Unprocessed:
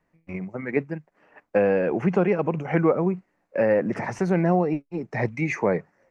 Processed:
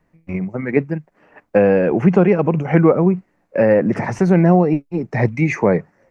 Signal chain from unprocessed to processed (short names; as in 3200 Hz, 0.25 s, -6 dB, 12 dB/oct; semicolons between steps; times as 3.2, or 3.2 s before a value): low shelf 300 Hz +6.5 dB; gain +5 dB